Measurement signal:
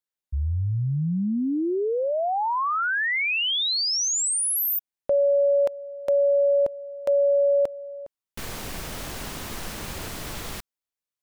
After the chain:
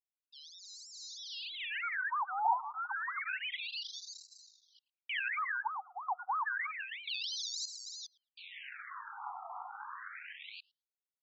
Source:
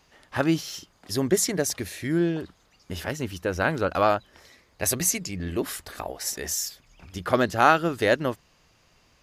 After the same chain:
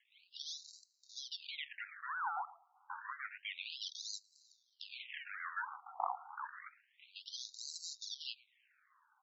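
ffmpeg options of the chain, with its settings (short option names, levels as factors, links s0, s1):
-filter_complex "[0:a]areverse,acompressor=threshold=0.0316:ratio=10:attack=46:release=259:knee=6:detection=peak,areverse,alimiter=level_in=1.12:limit=0.0631:level=0:latency=1:release=23,volume=0.891,adynamicsmooth=sensitivity=6:basefreq=2200,acrusher=samples=34:mix=1:aa=0.000001:lfo=1:lforange=20.4:lforate=3.1,asplit=2[s0][s1];[s1]adelay=110,lowpass=f=1400:p=1,volume=0.141,asplit=2[s2][s3];[s3]adelay=110,lowpass=f=1400:p=1,volume=0.27,asplit=2[s4][s5];[s5]adelay=110,lowpass=f=1400:p=1,volume=0.27[s6];[s2][s4][s6]amix=inputs=3:normalize=0[s7];[s0][s7]amix=inputs=2:normalize=0,afftfilt=real='re*between(b*sr/1024,970*pow(5500/970,0.5+0.5*sin(2*PI*0.29*pts/sr))/1.41,970*pow(5500/970,0.5+0.5*sin(2*PI*0.29*pts/sr))*1.41)':imag='im*between(b*sr/1024,970*pow(5500/970,0.5+0.5*sin(2*PI*0.29*pts/sr))/1.41,970*pow(5500/970,0.5+0.5*sin(2*PI*0.29*pts/sr))*1.41)':win_size=1024:overlap=0.75,volume=1.78"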